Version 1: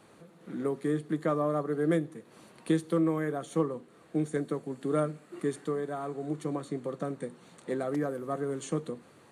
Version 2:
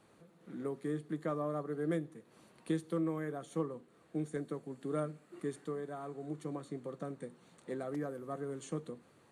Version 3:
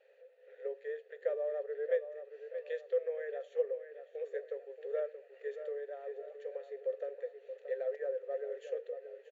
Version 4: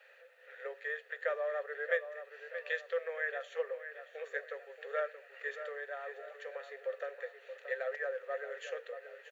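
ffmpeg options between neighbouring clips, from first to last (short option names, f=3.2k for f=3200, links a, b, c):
-af "lowshelf=f=89:g=5,volume=-8dB"
-filter_complex "[0:a]asplit=3[a][b][c];[a]bandpass=f=530:t=q:w=8,volume=0dB[d];[b]bandpass=f=1.84k:t=q:w=8,volume=-6dB[e];[c]bandpass=f=2.48k:t=q:w=8,volume=-9dB[f];[d][e][f]amix=inputs=3:normalize=0,asplit=2[g][h];[h]adelay=627,lowpass=f=3.7k:p=1,volume=-10dB,asplit=2[i][j];[j]adelay=627,lowpass=f=3.7k:p=1,volume=0.44,asplit=2[k][l];[l]adelay=627,lowpass=f=3.7k:p=1,volume=0.44,asplit=2[m][n];[n]adelay=627,lowpass=f=3.7k:p=1,volume=0.44,asplit=2[o][p];[p]adelay=627,lowpass=f=3.7k:p=1,volume=0.44[q];[g][i][k][m][o][q]amix=inputs=6:normalize=0,afftfilt=real='re*between(b*sr/4096,390,7500)':imag='im*between(b*sr/4096,390,7500)':win_size=4096:overlap=0.75,volume=10.5dB"
-af "highpass=f=1.2k:t=q:w=2.1,volume=10.5dB"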